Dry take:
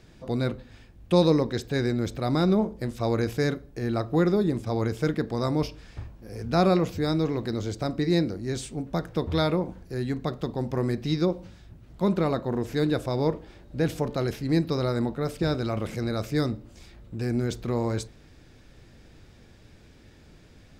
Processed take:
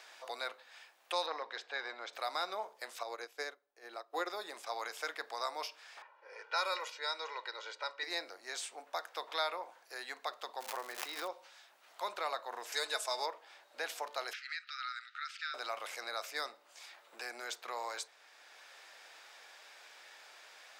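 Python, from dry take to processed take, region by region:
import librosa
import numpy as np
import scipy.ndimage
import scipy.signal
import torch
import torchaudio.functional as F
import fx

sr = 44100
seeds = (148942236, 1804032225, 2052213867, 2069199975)

y = fx.chain(x, sr, fx.lowpass(hz=3400.0, slope=12),
    fx.peak_eq(hz=69.0, db=-7.0, octaves=2.2),
    fx.transformer_sat(knee_hz=500.0), at=(1.26, 2.13))
y = fx.chain(y, sr, fx.peak_eq(hz=360.0, db=9.0, octaves=1.5),
    fx.upward_expand(threshold_db=-26.0, expansion=2.5), at=(3.03, 4.3))
y = fx.chain(y, sr, fx.highpass(hz=840.0, slope=6),
    fx.env_lowpass(base_hz=1600.0, full_db=-24.0),
    fx.comb(ms=2.1, depth=0.91), at=(6.02, 8.03))
y = fx.lowpass(y, sr, hz=1800.0, slope=6, at=(10.59, 11.27), fade=0.02)
y = fx.dmg_crackle(y, sr, seeds[0], per_s=320.0, level_db=-34.0, at=(10.59, 11.27), fade=0.02)
y = fx.pre_swell(y, sr, db_per_s=35.0, at=(10.59, 11.27), fade=0.02)
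y = fx.chain(y, sr, fx.peak_eq(hz=7700.0, db=14.0, octaves=1.6),
    fx.comb(ms=4.7, depth=0.55), at=(12.72, 13.26))
y = fx.chain(y, sr, fx.brickwall_highpass(low_hz=1200.0),
    fx.air_absorb(metres=160.0),
    fx.band_squash(depth_pct=70), at=(14.33, 15.54))
y = scipy.signal.sosfilt(scipy.signal.butter(4, 740.0, 'highpass', fs=sr, output='sos'), y)
y = fx.band_squash(y, sr, depth_pct=40)
y = y * 10.0 ** (-2.5 / 20.0)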